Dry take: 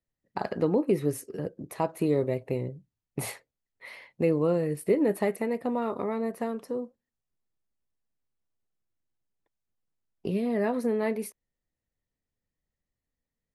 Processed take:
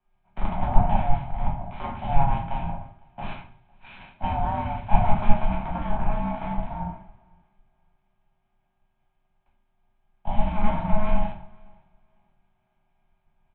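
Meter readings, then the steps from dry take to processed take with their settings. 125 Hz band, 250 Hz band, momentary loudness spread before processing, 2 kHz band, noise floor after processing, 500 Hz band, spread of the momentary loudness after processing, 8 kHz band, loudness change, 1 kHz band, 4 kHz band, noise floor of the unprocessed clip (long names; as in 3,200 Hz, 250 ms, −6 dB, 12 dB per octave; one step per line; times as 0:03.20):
+6.5 dB, −3.0 dB, 14 LU, +1.5 dB, −72 dBFS, −7.5 dB, 16 LU, below −35 dB, +0.5 dB, +10.5 dB, +2.5 dB, below −85 dBFS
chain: compressor on every frequency bin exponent 0.4
high-pass filter 190 Hz 24 dB per octave
parametric band 880 Hz −10 dB 0.37 octaves
hum with harmonics 400 Hz, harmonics 3, −51 dBFS
ring modulation 420 Hz
repeating echo 507 ms, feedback 42%, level −16 dB
rectangular room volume 68 cubic metres, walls mixed, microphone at 1 metre
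downsampling to 8,000 Hz
multiband upward and downward expander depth 100%
level −7 dB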